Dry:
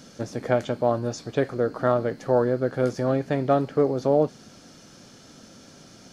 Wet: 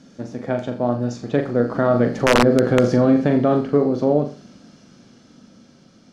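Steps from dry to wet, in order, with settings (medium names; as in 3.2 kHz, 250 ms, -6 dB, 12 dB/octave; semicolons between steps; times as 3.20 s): Doppler pass-by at 2.61 s, 9 m/s, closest 4.9 m; peaking EQ 220 Hz +8 dB 0.89 oct; flutter echo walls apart 7.1 m, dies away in 0.35 s; integer overflow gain 9.5 dB; distance through air 59 m; loudness maximiser +14.5 dB; trim -5 dB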